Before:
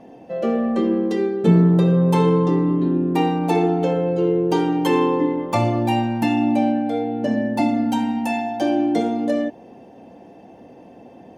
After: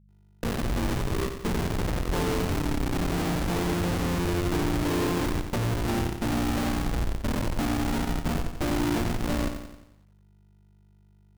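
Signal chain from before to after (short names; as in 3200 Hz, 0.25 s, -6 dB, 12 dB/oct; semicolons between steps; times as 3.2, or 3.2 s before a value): bell 170 Hz -10.5 dB 0.28 oct, from 2.93 s +4.5 dB; Schmitt trigger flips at -17 dBFS; buzz 50 Hz, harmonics 4, -52 dBFS -4 dB/oct; lo-fi delay 89 ms, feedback 55%, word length 9-bit, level -8 dB; gain -6 dB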